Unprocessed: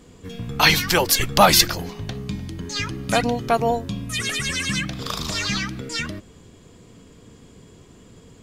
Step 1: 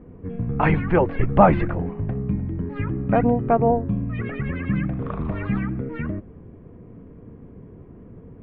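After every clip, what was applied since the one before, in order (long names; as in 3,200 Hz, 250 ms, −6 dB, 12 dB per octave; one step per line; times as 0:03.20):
Butterworth low-pass 2,400 Hz 36 dB per octave
tilt shelving filter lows +10 dB, about 1,300 Hz
level −4.5 dB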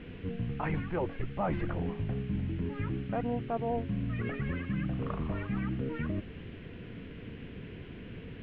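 reversed playback
downward compressor 5 to 1, threshold −29 dBFS, peak gain reduction 18.5 dB
reversed playback
noise in a band 1,400–3,100 Hz −56 dBFS
level −1.5 dB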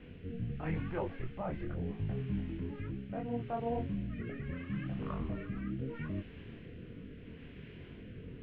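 chorus effect 0.99 Hz, delay 20 ms, depth 7.2 ms
rotating-speaker cabinet horn 0.75 Hz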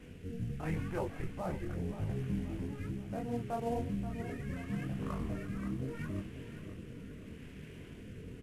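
variable-slope delta modulation 64 kbit/s
repeating echo 530 ms, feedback 50%, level −11.5 dB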